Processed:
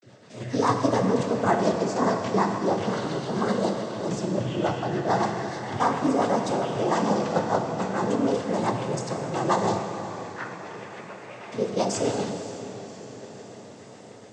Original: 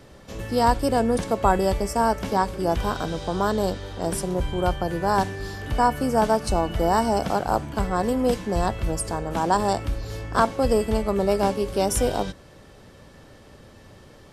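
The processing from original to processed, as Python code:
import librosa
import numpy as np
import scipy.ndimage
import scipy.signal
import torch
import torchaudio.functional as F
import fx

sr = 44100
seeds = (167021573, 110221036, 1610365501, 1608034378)

p1 = fx.bandpass_q(x, sr, hz=2000.0, q=3.5, at=(9.79, 11.52))
p2 = fx.noise_vocoder(p1, sr, seeds[0], bands=16)
p3 = fx.rotary(p2, sr, hz=7.0)
p4 = p3 + fx.echo_diffused(p3, sr, ms=559, feedback_pct=68, wet_db=-14.0, dry=0)
p5 = fx.vibrato(p4, sr, rate_hz=0.37, depth_cents=64.0)
y = fx.rev_plate(p5, sr, seeds[1], rt60_s=2.3, hf_ratio=0.95, predelay_ms=0, drr_db=4.5)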